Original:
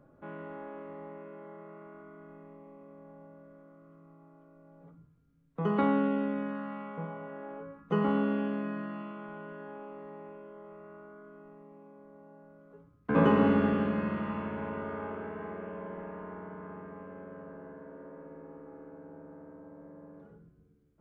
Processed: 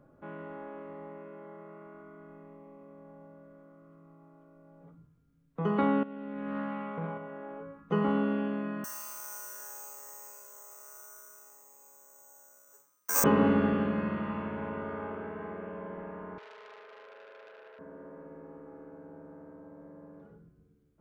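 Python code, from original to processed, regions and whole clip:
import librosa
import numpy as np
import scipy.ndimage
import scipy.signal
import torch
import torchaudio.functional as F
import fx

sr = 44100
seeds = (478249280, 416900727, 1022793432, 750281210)

y = fx.chain(x, sr, fx.over_compress(threshold_db=-37.0, ratio=-1.0),
    fx.doppler_dist(depth_ms=0.12), at=(6.03, 7.18))
y = fx.chain(y, sr, fx.highpass(hz=1000.0, slope=12),
    fx.resample_bad(factor=6, down='none', up='zero_stuff'), at=(8.84, 13.24))
y = fx.chain(y, sr, fx.brickwall_highpass(low_hz=380.0),
    fx.transformer_sat(knee_hz=2400.0), at=(16.38, 17.79))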